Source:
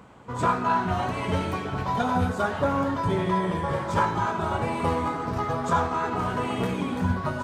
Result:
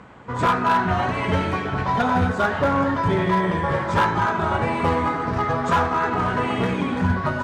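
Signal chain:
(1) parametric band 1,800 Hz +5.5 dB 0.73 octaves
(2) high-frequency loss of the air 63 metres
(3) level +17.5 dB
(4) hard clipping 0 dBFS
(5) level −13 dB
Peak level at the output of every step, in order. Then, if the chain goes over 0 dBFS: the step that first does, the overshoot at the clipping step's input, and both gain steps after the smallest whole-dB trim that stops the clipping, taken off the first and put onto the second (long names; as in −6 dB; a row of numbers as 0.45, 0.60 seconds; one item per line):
−10.0, −10.5, +7.0, 0.0, −13.0 dBFS
step 3, 7.0 dB
step 3 +10.5 dB, step 5 −6 dB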